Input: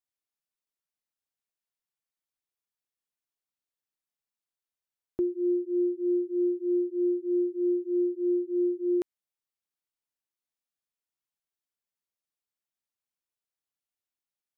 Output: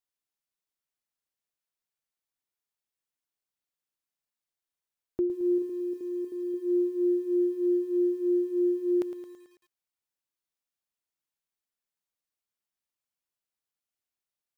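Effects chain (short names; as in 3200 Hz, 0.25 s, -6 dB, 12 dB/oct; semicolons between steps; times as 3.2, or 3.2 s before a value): 5.58–6.54 level quantiser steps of 11 dB; lo-fi delay 0.11 s, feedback 55%, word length 9-bit, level -12 dB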